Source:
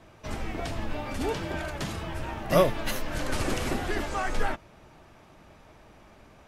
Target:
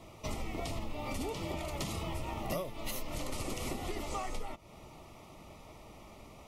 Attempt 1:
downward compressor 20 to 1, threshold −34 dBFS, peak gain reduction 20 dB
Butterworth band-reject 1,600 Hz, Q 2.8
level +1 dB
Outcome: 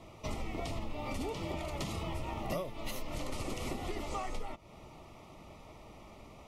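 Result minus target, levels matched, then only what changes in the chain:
8,000 Hz band −3.5 dB
add after Butterworth band-reject: high-shelf EQ 7,400 Hz +8 dB

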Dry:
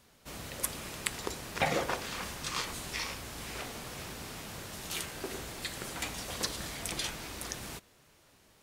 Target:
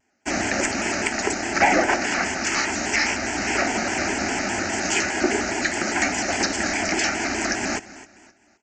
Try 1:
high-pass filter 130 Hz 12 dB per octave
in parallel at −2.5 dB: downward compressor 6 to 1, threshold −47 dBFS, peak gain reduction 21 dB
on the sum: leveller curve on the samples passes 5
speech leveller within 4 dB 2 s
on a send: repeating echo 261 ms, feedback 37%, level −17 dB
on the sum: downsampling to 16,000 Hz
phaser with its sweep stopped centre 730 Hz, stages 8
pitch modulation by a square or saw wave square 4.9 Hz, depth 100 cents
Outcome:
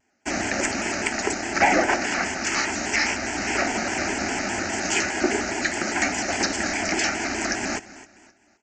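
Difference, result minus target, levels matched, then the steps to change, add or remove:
downward compressor: peak gain reduction +6 dB
change: downward compressor 6 to 1, threshold −39.5 dBFS, peak gain reduction 14.5 dB

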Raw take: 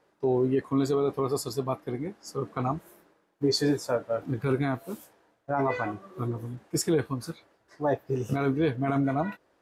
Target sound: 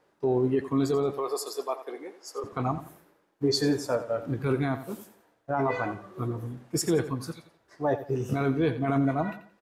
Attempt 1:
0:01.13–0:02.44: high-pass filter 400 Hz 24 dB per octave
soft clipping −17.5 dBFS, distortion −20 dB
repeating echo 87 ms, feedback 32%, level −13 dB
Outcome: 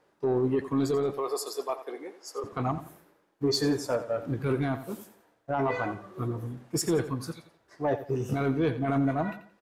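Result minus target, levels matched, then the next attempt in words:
soft clipping: distortion +16 dB
0:01.13–0:02.44: high-pass filter 400 Hz 24 dB per octave
soft clipping −8.5 dBFS, distortion −36 dB
repeating echo 87 ms, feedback 32%, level −13 dB

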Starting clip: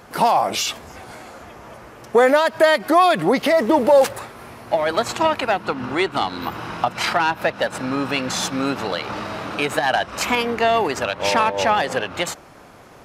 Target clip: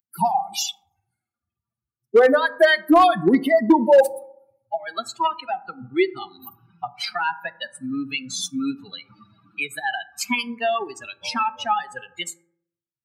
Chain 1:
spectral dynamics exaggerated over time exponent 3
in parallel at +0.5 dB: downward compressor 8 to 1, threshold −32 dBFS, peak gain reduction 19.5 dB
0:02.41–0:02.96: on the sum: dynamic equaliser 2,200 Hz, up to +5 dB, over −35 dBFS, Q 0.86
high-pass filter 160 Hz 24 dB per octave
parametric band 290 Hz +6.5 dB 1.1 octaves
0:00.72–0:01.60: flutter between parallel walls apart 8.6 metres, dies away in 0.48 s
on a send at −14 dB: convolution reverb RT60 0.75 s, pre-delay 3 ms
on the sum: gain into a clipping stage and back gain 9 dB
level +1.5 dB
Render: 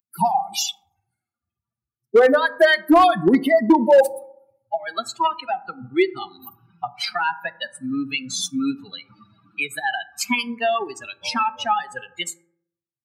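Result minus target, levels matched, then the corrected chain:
downward compressor: peak gain reduction −6.5 dB
spectral dynamics exaggerated over time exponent 3
in parallel at +0.5 dB: downward compressor 8 to 1, threshold −39.5 dBFS, peak gain reduction 26 dB
0:02.41–0:02.96: on the sum: dynamic equaliser 2,200 Hz, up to +5 dB, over −35 dBFS, Q 0.86
high-pass filter 160 Hz 24 dB per octave
parametric band 290 Hz +6.5 dB 1.1 octaves
0:00.72–0:01.60: flutter between parallel walls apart 8.6 metres, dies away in 0.48 s
on a send at −14 dB: convolution reverb RT60 0.75 s, pre-delay 3 ms
on the sum: gain into a clipping stage and back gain 9 dB
level +1.5 dB

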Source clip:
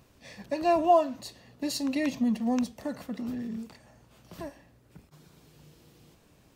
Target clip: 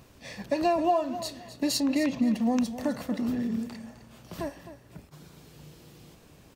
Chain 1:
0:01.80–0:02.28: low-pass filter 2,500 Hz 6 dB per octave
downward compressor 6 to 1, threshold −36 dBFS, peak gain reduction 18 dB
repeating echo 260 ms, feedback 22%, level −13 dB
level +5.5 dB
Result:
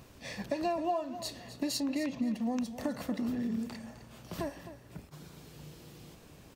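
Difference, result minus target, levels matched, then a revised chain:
downward compressor: peak gain reduction +7.5 dB
0:01.80–0:02.28: low-pass filter 2,500 Hz 6 dB per octave
downward compressor 6 to 1, threshold −27 dBFS, peak gain reduction 10.5 dB
repeating echo 260 ms, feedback 22%, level −13 dB
level +5.5 dB

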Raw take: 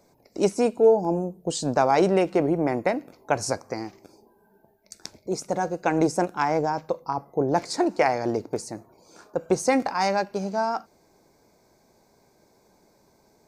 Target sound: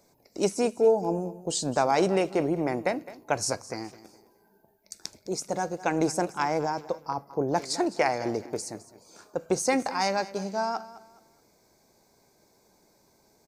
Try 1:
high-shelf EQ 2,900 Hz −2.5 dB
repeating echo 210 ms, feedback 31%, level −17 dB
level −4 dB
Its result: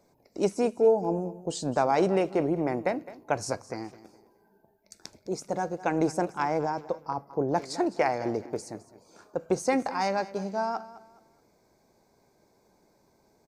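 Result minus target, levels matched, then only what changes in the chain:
8,000 Hz band −7.0 dB
change: high-shelf EQ 2,900 Hz +6.5 dB

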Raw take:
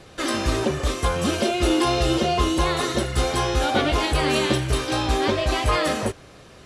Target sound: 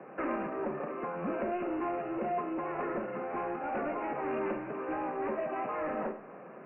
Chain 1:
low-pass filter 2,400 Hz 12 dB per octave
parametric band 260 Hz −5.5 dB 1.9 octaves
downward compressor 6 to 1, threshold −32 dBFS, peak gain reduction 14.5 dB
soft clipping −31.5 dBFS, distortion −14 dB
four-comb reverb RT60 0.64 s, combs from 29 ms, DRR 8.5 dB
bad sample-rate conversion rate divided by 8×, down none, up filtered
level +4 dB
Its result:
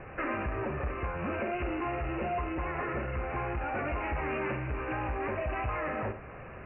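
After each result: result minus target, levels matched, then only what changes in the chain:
125 Hz band +12.0 dB; 2,000 Hz band +5.0 dB
add after downward compressor: Butterworth high-pass 170 Hz 48 dB per octave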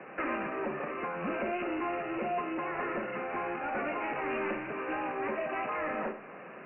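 2,000 Hz band +5.5 dB
change: low-pass filter 1,100 Hz 12 dB per octave

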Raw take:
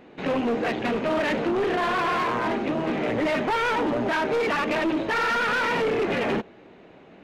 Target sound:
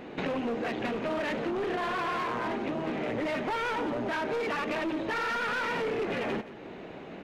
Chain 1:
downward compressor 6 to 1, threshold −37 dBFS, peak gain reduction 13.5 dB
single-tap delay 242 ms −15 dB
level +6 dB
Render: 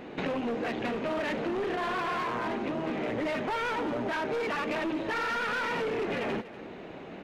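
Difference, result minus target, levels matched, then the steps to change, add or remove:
echo 67 ms late
change: single-tap delay 175 ms −15 dB

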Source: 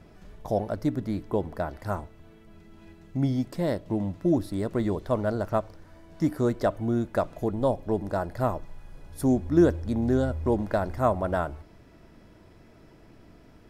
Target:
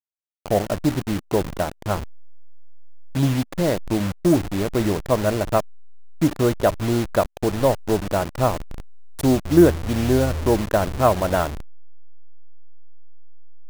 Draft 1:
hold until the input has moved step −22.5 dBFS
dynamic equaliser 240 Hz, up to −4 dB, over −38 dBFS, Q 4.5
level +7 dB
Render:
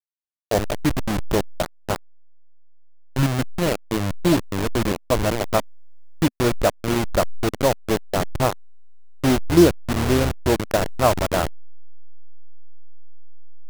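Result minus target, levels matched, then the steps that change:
hold until the input has moved: distortion +8 dB
change: hold until the input has moved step −30.5 dBFS

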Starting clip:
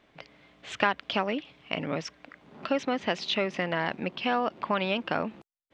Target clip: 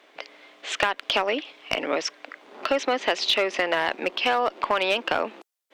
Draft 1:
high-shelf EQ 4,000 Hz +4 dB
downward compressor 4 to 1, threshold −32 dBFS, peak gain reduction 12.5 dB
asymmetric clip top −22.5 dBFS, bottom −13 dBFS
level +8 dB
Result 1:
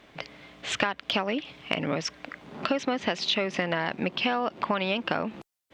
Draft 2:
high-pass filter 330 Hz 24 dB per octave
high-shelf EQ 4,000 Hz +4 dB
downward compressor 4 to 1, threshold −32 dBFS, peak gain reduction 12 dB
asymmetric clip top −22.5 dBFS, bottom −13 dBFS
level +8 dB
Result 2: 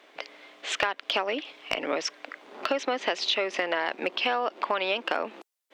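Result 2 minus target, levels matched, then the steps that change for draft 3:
downward compressor: peak gain reduction +5 dB
change: downward compressor 4 to 1, threshold −25.5 dBFS, peak gain reduction 7 dB

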